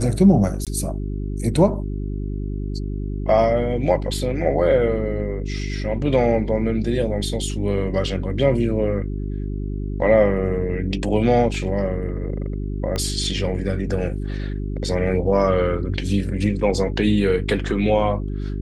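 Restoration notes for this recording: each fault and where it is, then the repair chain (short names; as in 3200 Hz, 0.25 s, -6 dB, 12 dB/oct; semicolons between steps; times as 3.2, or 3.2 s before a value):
hum 50 Hz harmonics 8 -26 dBFS
0.65–0.67 gap 17 ms
12.96 pop -12 dBFS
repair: de-click; de-hum 50 Hz, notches 8; interpolate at 0.65, 17 ms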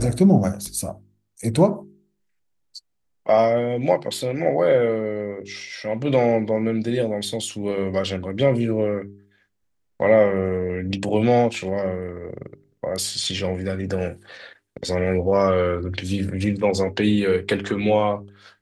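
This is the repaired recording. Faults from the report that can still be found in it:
12.96 pop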